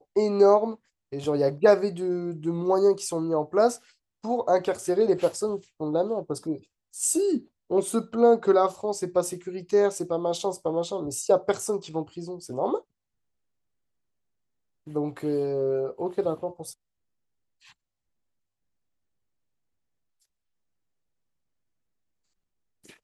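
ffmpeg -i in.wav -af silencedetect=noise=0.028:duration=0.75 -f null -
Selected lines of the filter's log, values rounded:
silence_start: 12.79
silence_end: 14.95 | silence_duration: 2.16
silence_start: 16.69
silence_end: 23.04 | silence_duration: 6.35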